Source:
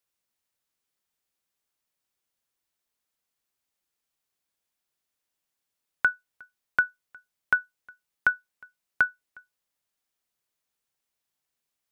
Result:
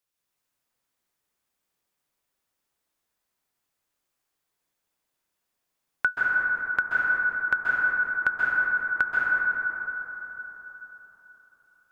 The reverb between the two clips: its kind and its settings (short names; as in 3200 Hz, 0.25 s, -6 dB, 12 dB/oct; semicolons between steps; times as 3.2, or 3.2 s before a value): plate-style reverb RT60 4.1 s, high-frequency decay 0.3×, pre-delay 0.12 s, DRR -6 dB; gain -1.5 dB